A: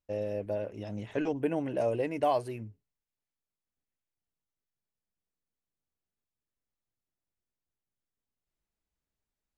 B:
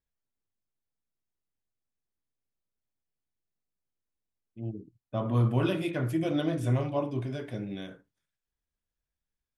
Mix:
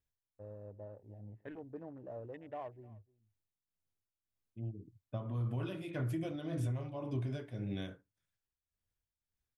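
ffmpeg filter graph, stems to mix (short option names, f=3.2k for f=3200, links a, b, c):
-filter_complex "[0:a]adynamicsmooth=sensitivity=8:basefreq=1k,equalizer=f=1.8k:w=5.5:g=10.5,afwtdn=0.0112,adelay=300,volume=-17dB,asplit=2[a][b];[b]volume=-22.5dB[c];[1:a]alimiter=limit=-23dB:level=0:latency=1:release=127,tremolo=f=1.8:d=0.7,volume=-1.5dB[d];[c]aecho=0:1:303:1[e];[a][d][e]amix=inputs=3:normalize=0,equalizer=f=95:t=o:w=0.68:g=10.5,acompressor=threshold=-33dB:ratio=6"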